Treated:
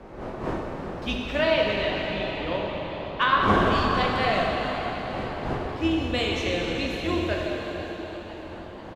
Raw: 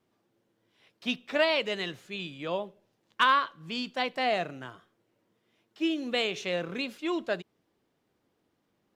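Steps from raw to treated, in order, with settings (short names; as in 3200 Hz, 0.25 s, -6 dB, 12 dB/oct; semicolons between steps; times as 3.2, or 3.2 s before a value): octaver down 2 oct, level -3 dB; wind noise 600 Hz -37 dBFS; 1.39–3.43 LPF 3900 Hz 12 dB/oct; frequency-shifting echo 0.492 s, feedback 55%, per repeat +120 Hz, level -15.5 dB; plate-style reverb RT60 4.9 s, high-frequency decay 0.8×, pre-delay 0 ms, DRR -2.5 dB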